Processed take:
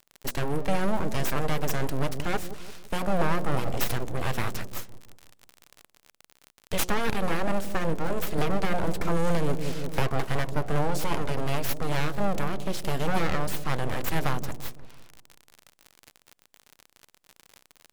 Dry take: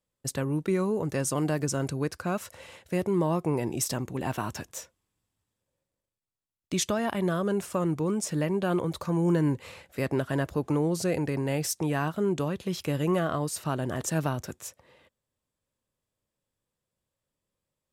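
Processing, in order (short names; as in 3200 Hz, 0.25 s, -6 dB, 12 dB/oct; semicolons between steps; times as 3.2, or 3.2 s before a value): notches 60/120/180/240/300/360/420/480/540 Hz; in parallel at +2 dB: vocal rider within 4 dB 2 s; on the sum: full-wave rectifier; dark delay 0.169 s, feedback 43%, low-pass 510 Hz, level -8 dB; crackle 61/s -29 dBFS; 8.38–10.09 three-band squash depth 100%; gain -3.5 dB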